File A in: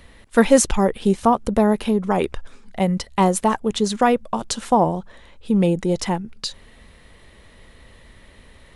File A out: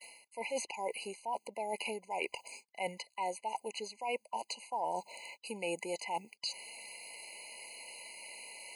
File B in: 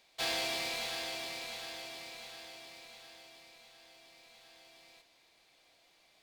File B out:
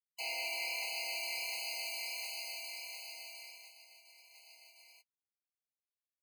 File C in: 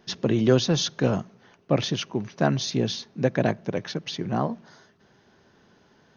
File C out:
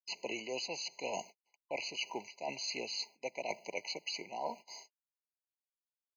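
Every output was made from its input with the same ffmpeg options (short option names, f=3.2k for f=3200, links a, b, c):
-filter_complex "[0:a]highpass=1.1k,aemphasis=mode=production:type=75fm,acrossover=split=3100[a][b];[b]acompressor=threshold=-34dB:ratio=4:attack=1:release=60[c];[a][c]amix=inputs=2:normalize=0,agate=range=-54dB:threshold=-51dB:ratio=16:detection=peak,highshelf=f=3.4k:g=-8,areverse,acompressor=threshold=-41dB:ratio=12,areverse,afftfilt=real='re*eq(mod(floor(b*sr/1024/1000),2),0)':imag='im*eq(mod(floor(b*sr/1024/1000),2),0)':win_size=1024:overlap=0.75,volume=8.5dB"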